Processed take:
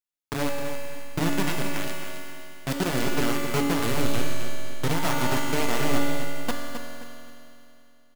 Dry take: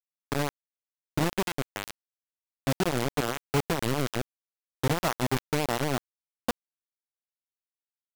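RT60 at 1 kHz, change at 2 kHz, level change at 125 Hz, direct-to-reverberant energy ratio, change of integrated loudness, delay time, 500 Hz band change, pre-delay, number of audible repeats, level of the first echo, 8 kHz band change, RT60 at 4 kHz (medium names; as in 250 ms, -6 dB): 2.8 s, +4.5 dB, +1.0 dB, -2.5 dB, +2.0 dB, 263 ms, +2.0 dB, 3 ms, 2, -9.0 dB, +4.5 dB, 2.9 s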